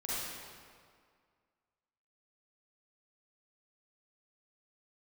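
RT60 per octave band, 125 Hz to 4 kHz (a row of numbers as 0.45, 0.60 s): 1.9, 2.0, 2.0, 2.0, 1.7, 1.4 s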